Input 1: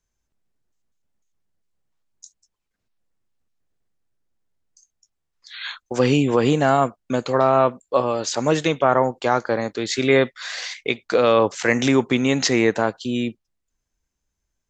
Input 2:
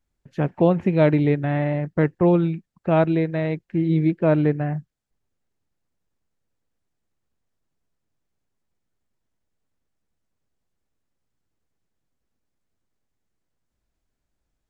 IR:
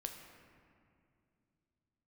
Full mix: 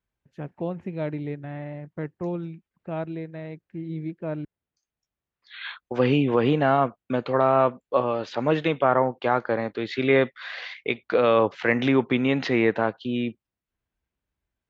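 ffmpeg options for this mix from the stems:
-filter_complex "[0:a]lowpass=frequency=3400:width=0.5412,lowpass=frequency=3400:width=1.3066,volume=-3dB[link_01];[1:a]volume=-12.5dB,asplit=3[link_02][link_03][link_04];[link_02]atrim=end=4.45,asetpts=PTS-STARTPTS,afade=type=out:start_time=4.446:duration=0.004:curve=hsin[link_05];[link_03]atrim=start=4.45:end=4.97,asetpts=PTS-STARTPTS,volume=0[link_06];[link_04]atrim=start=4.97,asetpts=PTS-STARTPTS,afade=type=in:duration=0.004:curve=hsin[link_07];[link_05][link_06][link_07]concat=n=3:v=0:a=1[link_08];[link_01][link_08]amix=inputs=2:normalize=0,highpass=46"

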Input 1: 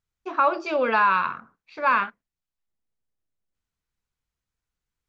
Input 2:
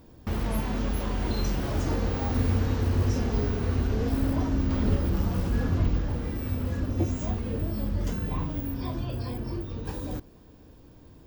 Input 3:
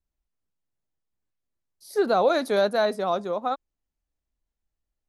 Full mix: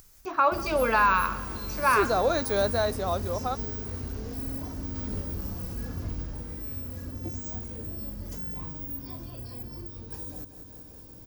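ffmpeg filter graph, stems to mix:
ffmpeg -i stem1.wav -i stem2.wav -i stem3.wav -filter_complex "[0:a]volume=-2dB,asplit=2[link_01][link_02];[link_02]volume=-19dB[link_03];[1:a]adelay=250,volume=-10dB,asplit=2[link_04][link_05];[link_05]volume=-12.5dB[link_06];[2:a]volume=-4dB[link_07];[link_03][link_06]amix=inputs=2:normalize=0,aecho=0:1:190|380|570|760|950|1140|1330|1520:1|0.55|0.303|0.166|0.0915|0.0503|0.0277|0.0152[link_08];[link_01][link_04][link_07][link_08]amix=inputs=4:normalize=0,acompressor=mode=upward:threshold=-39dB:ratio=2.5,aexciter=amount=2.9:drive=5.6:freq=4700" out.wav

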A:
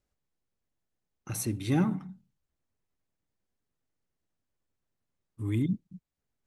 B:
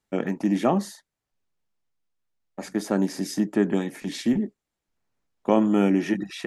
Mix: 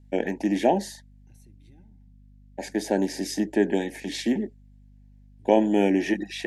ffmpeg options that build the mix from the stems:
ffmpeg -i stem1.wav -i stem2.wav -filter_complex "[0:a]acompressor=threshold=-39dB:ratio=3,volume=-19dB[link_01];[1:a]highpass=300,volume=3dB[link_02];[link_01][link_02]amix=inputs=2:normalize=0,aeval=exprs='val(0)+0.00282*(sin(2*PI*50*n/s)+sin(2*PI*2*50*n/s)/2+sin(2*PI*3*50*n/s)/3+sin(2*PI*4*50*n/s)/4+sin(2*PI*5*50*n/s)/5)':channel_layout=same,asuperstop=centerf=1200:order=8:qfactor=2,highshelf=frequency=9600:gain=-5.5" out.wav

